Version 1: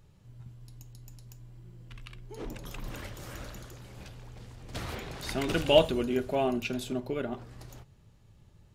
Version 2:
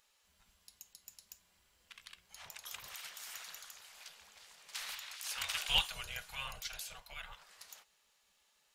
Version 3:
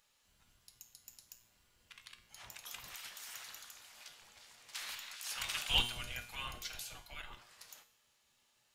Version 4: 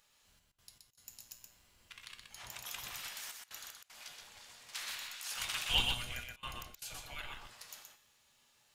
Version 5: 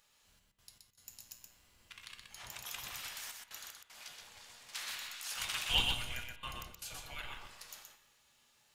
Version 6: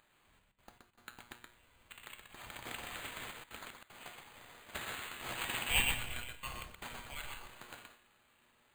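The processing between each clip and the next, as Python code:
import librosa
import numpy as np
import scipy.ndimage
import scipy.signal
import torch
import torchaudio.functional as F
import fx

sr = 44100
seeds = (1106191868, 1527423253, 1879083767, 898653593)

y1 = fx.spec_gate(x, sr, threshold_db=-15, keep='weak')
y1 = fx.tone_stack(y1, sr, knobs='10-0-10')
y1 = y1 * 10.0 ** (4.0 / 20.0)
y2 = fx.octave_divider(y1, sr, octaves=1, level_db=4.0)
y2 = fx.comb_fb(y2, sr, f0_hz=120.0, decay_s=0.64, harmonics='all', damping=0.0, mix_pct=70)
y2 = y2 * 10.0 ** (7.5 / 20.0)
y3 = fx.rider(y2, sr, range_db=4, speed_s=2.0)
y3 = fx.step_gate(y3, sr, bpm=77, pattern='xx.x.xxxxxxxxxx', floor_db=-24.0, edge_ms=4.5)
y3 = y3 + 10.0 ** (-4.5 / 20.0) * np.pad(y3, (int(124 * sr / 1000.0), 0))[:len(y3)]
y3 = y3 * 10.0 ** (-1.0 / 20.0)
y4 = fx.rev_spring(y3, sr, rt60_s=1.6, pass_ms=(31, 52), chirp_ms=50, drr_db=13.0)
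y5 = np.repeat(y4[::8], 8)[:len(y4)]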